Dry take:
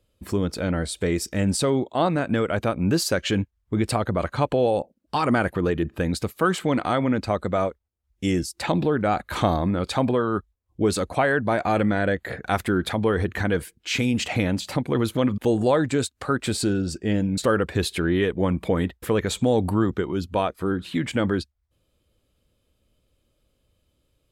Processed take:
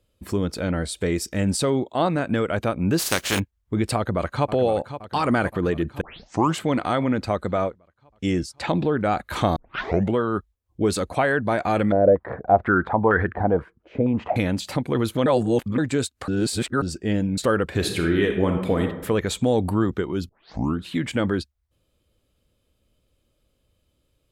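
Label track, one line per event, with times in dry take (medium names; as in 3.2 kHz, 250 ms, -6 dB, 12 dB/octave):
2.980000	3.380000	spectral contrast reduction exponent 0.37
3.960000	4.520000	echo throw 520 ms, feedback 65%, level -11.5 dB
6.010000	6.010000	tape start 0.57 s
7.520000	8.970000	distance through air 55 m
9.560000	9.560000	tape start 0.61 s
11.920000	14.360000	step-sequenced low-pass 4.2 Hz 580–1600 Hz
15.260000	15.780000	reverse
16.280000	16.820000	reverse
17.640000	18.820000	reverb throw, RT60 0.85 s, DRR 3.5 dB
20.290000	20.290000	tape start 0.51 s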